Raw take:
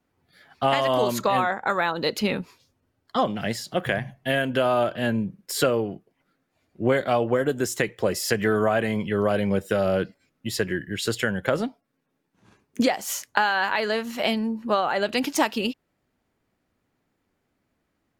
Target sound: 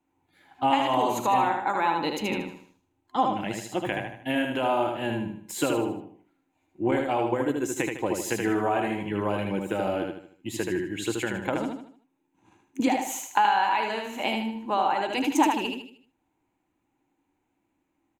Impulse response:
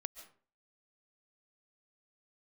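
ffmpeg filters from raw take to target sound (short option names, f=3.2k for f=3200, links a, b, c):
-filter_complex "[0:a]asettb=1/sr,asplit=3[a][b][c];[a]atrim=end=6.914[d];[b]atrim=start=6.91:end=7.69,asetpts=PTS-STARTPTS,afade=t=in:d=0.004:c=qsin,afade=t=out:st=0.776:d=0.004:c=qsin,agate=range=-33dB:threshold=-22dB:ratio=3:detection=peak[e];[c]atrim=start=7.686[f];[d][e]acrossfade=d=0.004:c1=hsin:c2=qsin[g];[g][f]acrossfade=d=0.004:c1=qsin:c2=hsin,superequalizer=6b=3.16:9b=3.16:12b=1.78:14b=0.447:15b=1.58,aecho=1:1:77|154|231|308|385:0.631|0.252|0.101|0.0404|0.0162,volume=-7.5dB"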